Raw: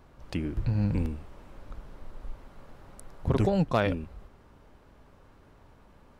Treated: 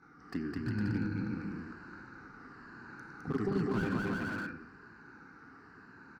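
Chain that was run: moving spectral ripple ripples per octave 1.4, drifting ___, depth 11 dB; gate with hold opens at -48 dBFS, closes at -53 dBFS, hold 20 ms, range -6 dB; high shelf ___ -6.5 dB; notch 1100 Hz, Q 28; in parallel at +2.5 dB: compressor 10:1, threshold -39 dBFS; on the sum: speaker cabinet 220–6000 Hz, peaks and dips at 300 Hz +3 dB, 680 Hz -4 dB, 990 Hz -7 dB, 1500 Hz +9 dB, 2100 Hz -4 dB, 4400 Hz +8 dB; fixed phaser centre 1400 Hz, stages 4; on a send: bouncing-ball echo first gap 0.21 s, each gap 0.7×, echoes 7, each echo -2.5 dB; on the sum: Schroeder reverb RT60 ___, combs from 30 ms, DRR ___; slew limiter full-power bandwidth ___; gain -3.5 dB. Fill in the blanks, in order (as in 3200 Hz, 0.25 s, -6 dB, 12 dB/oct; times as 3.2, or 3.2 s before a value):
-0.97 Hz, 4100 Hz, 1 s, 14.5 dB, 28 Hz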